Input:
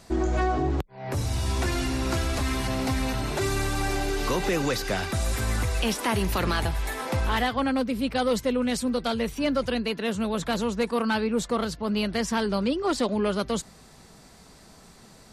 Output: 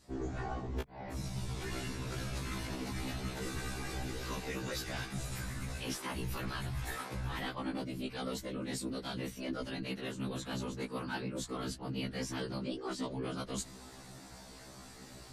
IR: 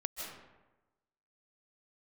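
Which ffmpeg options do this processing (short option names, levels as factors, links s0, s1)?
-af "adynamicequalizer=threshold=0.0112:dfrequency=620:dqfactor=0.76:tfrequency=620:tqfactor=0.76:attack=5:release=100:ratio=0.375:range=2.5:mode=cutabove:tftype=bell,afftfilt=real='hypot(re,im)*cos(2*PI*random(0))':imag='hypot(re,im)*sin(2*PI*random(1))':win_size=512:overlap=0.75,areverse,acompressor=threshold=0.00794:ratio=6,areverse,afftfilt=real='re*1.73*eq(mod(b,3),0)':imag='im*1.73*eq(mod(b,3),0)':win_size=2048:overlap=0.75,volume=2.51"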